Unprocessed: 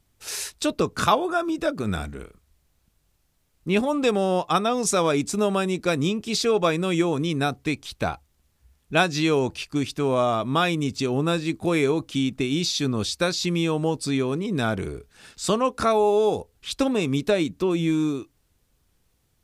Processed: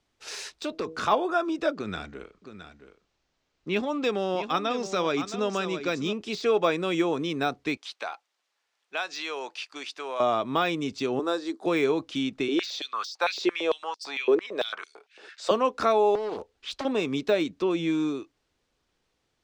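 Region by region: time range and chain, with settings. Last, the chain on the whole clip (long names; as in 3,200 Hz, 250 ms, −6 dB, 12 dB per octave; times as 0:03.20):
0:00.51–0:01.04: gain into a clipping stage and back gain 14.5 dB + hum removal 160.6 Hz, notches 4 + downward compressor 3 to 1, threshold −25 dBFS
0:01.75–0:06.13: low-pass filter 7,500 Hz 24 dB per octave + dynamic equaliser 690 Hz, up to −5 dB, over −36 dBFS, Q 0.86 + single-tap delay 668 ms −11 dB
0:07.77–0:10.20: high-pass filter 730 Hz + downward compressor 2 to 1, threshold −29 dBFS
0:11.19–0:11.66: high-pass filter 290 Hz 24 dB per octave + parametric band 2,500 Hz −14 dB 0.59 octaves
0:12.48–0:15.51: high-shelf EQ 5,200 Hz −6 dB + high-pass on a step sequencer 8.9 Hz 390–5,200 Hz
0:16.15–0:16.85: parametric band 140 Hz −13.5 dB 0.31 octaves + downward compressor 16 to 1, threshold −24 dBFS + highs frequency-modulated by the lows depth 0.94 ms
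whole clip: three-way crossover with the lows and the highs turned down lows −13 dB, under 250 Hz, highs −23 dB, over 6,600 Hz; de-essing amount 80%; level −1 dB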